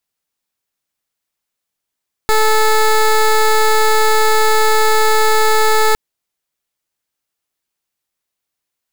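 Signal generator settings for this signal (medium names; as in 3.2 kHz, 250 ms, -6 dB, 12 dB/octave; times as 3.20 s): pulse 435 Hz, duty 15% -11 dBFS 3.66 s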